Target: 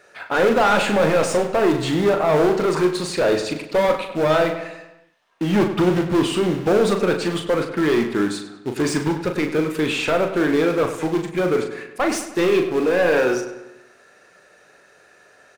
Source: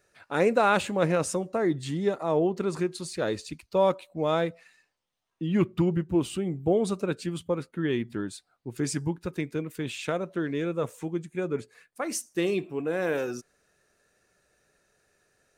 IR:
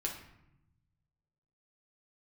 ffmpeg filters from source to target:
-filter_complex "[0:a]acrusher=bits=5:mode=log:mix=0:aa=0.000001,asplit=2[link_01][link_02];[link_02]highpass=frequency=720:poles=1,volume=27dB,asoftclip=type=tanh:threshold=-9.5dB[link_03];[link_01][link_03]amix=inputs=2:normalize=0,lowpass=frequency=1800:poles=1,volume=-6dB,asplit=2[link_04][link_05];[link_05]adelay=39,volume=-7dB[link_06];[link_04][link_06]amix=inputs=2:normalize=0,asplit=2[link_07][link_08];[link_08]adelay=99,lowpass=frequency=4400:poles=1,volume=-10.5dB,asplit=2[link_09][link_10];[link_10]adelay=99,lowpass=frequency=4400:poles=1,volume=0.53,asplit=2[link_11][link_12];[link_12]adelay=99,lowpass=frequency=4400:poles=1,volume=0.53,asplit=2[link_13][link_14];[link_14]adelay=99,lowpass=frequency=4400:poles=1,volume=0.53,asplit=2[link_15][link_16];[link_16]adelay=99,lowpass=frequency=4400:poles=1,volume=0.53,asplit=2[link_17][link_18];[link_18]adelay=99,lowpass=frequency=4400:poles=1,volume=0.53[link_19];[link_07][link_09][link_11][link_13][link_15][link_17][link_19]amix=inputs=7:normalize=0"

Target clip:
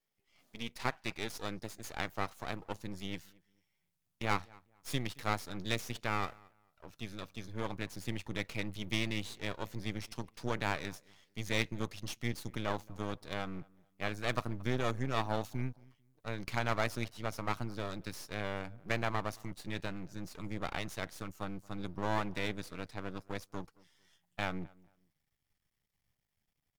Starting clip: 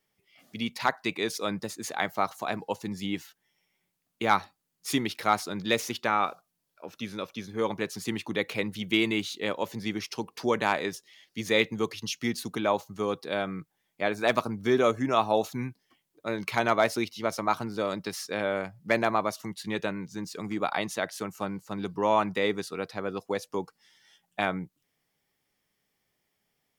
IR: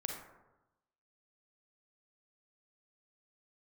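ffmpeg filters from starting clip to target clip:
-filter_complex "[0:a]asplit=2[link_01][link_02];[link_02]adelay=223,lowpass=frequency=1700:poles=1,volume=-24dB,asplit=2[link_03][link_04];[link_04]adelay=223,lowpass=frequency=1700:poles=1,volume=0.27[link_05];[link_01][link_03][link_05]amix=inputs=3:normalize=0,asubboost=boost=8:cutoff=110,aeval=exprs='max(val(0),0)':channel_layout=same,volume=-5.5dB"

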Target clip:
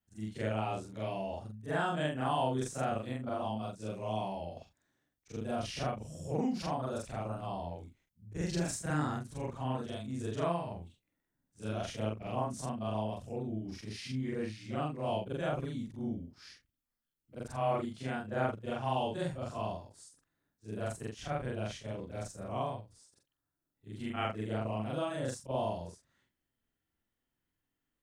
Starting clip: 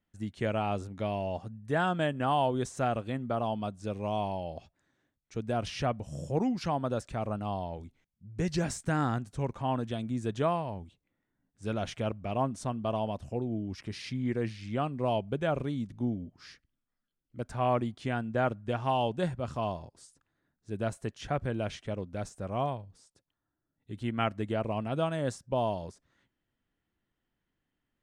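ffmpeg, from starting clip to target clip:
ffmpeg -i in.wav -af "afftfilt=real='re':imag='-im':win_size=4096:overlap=0.75,crystalizer=i=1:c=0" out.wav

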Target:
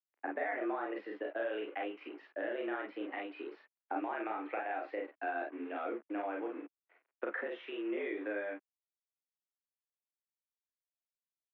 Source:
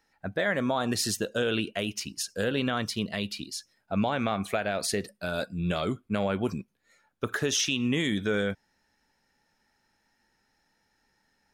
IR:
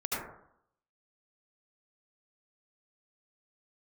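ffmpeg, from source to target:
-filter_complex "[0:a]acompressor=threshold=-41dB:ratio=8,acrusher=bits=8:mix=0:aa=0.5,highpass=frequency=200:width_type=q:width=0.5412,highpass=frequency=200:width_type=q:width=1.307,lowpass=frequency=2300:width_type=q:width=0.5176,lowpass=frequency=2300:width_type=q:width=0.7071,lowpass=frequency=2300:width_type=q:width=1.932,afreqshift=97,asplit=2[link_01][link_02];[link_02]aecho=0:1:35|49:0.668|0.631[link_03];[link_01][link_03]amix=inputs=2:normalize=0,volume=4.5dB"

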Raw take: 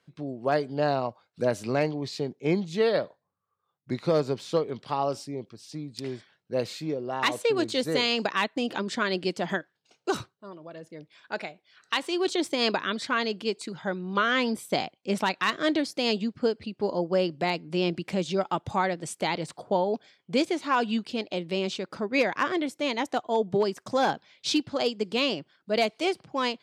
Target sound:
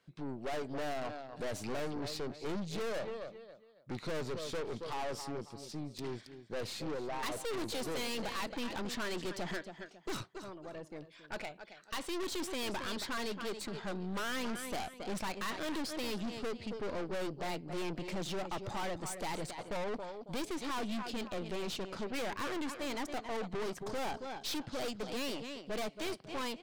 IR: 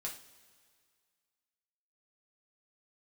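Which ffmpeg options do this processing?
-af "aecho=1:1:274|548|822:0.178|0.0498|0.0139,aeval=exprs='(tanh(63.1*val(0)+0.6)-tanh(0.6))/63.1':channel_layout=same"

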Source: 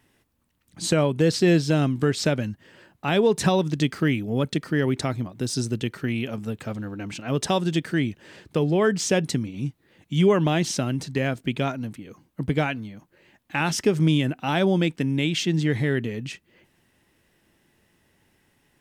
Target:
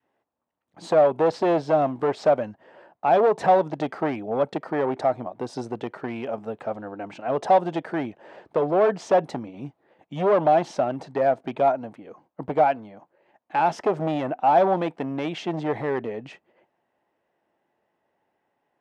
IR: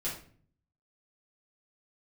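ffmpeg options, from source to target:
-af "agate=range=-8dB:threshold=-56dB:ratio=16:detection=peak,adynamicequalizer=threshold=0.0178:dfrequency=720:dqfactor=1.3:tfrequency=720:tqfactor=1.3:attack=5:release=100:ratio=0.375:range=2.5:mode=boostabove:tftype=bell,asoftclip=type=hard:threshold=-18dB,bandpass=frequency=720:width_type=q:width=2:csg=0,volume=9dB"

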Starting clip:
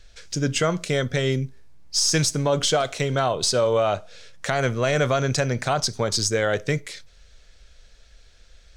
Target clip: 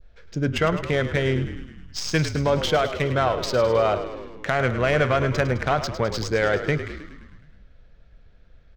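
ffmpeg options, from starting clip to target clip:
ffmpeg -i in.wav -filter_complex "[0:a]adynamicsmooth=sensitivity=1:basefreq=1700,asplit=9[link_01][link_02][link_03][link_04][link_05][link_06][link_07][link_08][link_09];[link_02]adelay=105,afreqshift=-43,volume=-11dB[link_10];[link_03]adelay=210,afreqshift=-86,volume=-14.9dB[link_11];[link_04]adelay=315,afreqshift=-129,volume=-18.8dB[link_12];[link_05]adelay=420,afreqshift=-172,volume=-22.6dB[link_13];[link_06]adelay=525,afreqshift=-215,volume=-26.5dB[link_14];[link_07]adelay=630,afreqshift=-258,volume=-30.4dB[link_15];[link_08]adelay=735,afreqshift=-301,volume=-34.3dB[link_16];[link_09]adelay=840,afreqshift=-344,volume=-38.1dB[link_17];[link_01][link_10][link_11][link_12][link_13][link_14][link_15][link_16][link_17]amix=inputs=9:normalize=0,adynamicequalizer=threshold=0.0141:dfrequency=2000:dqfactor=0.83:tfrequency=2000:tqfactor=0.83:attack=5:release=100:ratio=0.375:range=2:mode=boostabove:tftype=bell" out.wav

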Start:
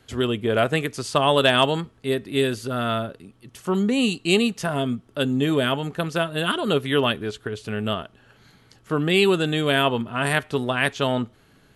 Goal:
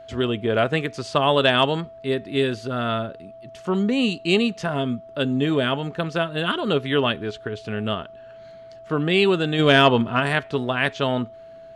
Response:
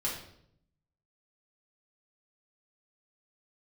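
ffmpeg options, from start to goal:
-filter_complex "[0:a]lowpass=5200,asplit=3[link_01][link_02][link_03];[link_01]afade=type=out:start_time=9.58:duration=0.02[link_04];[link_02]acontrast=51,afade=type=in:start_time=9.58:duration=0.02,afade=type=out:start_time=10.19:duration=0.02[link_05];[link_03]afade=type=in:start_time=10.19:duration=0.02[link_06];[link_04][link_05][link_06]amix=inputs=3:normalize=0,aeval=exprs='val(0)+0.01*sin(2*PI*660*n/s)':channel_layout=same"

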